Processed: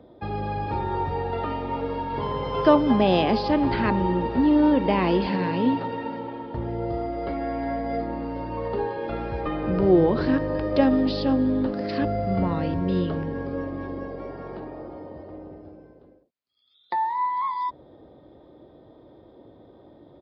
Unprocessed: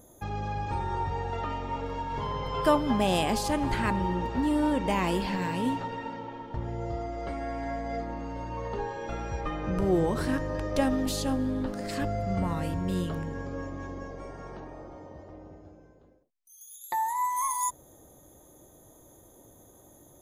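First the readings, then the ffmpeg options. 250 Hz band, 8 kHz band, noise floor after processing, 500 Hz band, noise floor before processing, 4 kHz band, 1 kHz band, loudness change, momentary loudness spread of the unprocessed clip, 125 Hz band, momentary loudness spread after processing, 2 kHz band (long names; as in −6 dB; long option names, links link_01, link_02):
+7.0 dB, below −25 dB, −53 dBFS, +7.0 dB, −56 dBFS, +2.5 dB, +4.0 dB, +5.5 dB, 15 LU, +3.5 dB, 15 LU, +2.5 dB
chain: -filter_complex "[0:a]highpass=48,acrossover=split=230|560|2600[link_01][link_02][link_03][link_04];[link_02]acontrast=87[link_05];[link_01][link_05][link_03][link_04]amix=inputs=4:normalize=0,aresample=11025,aresample=44100,volume=2.5dB"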